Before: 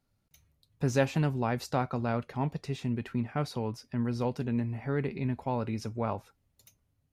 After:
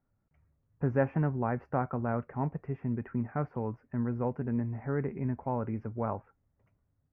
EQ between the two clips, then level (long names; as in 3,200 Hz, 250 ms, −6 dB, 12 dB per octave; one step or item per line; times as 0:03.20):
inverse Chebyshev low-pass filter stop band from 3,600 Hz, stop band 40 dB
−1.0 dB